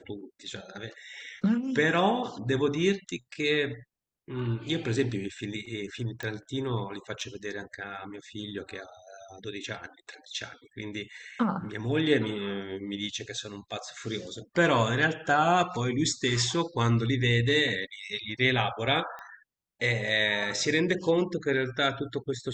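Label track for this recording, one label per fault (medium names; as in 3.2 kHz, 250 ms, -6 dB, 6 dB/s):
6.230000	6.230000	pop -21 dBFS
7.210000	7.210000	dropout 3.2 ms
19.190000	19.190000	pop -28 dBFS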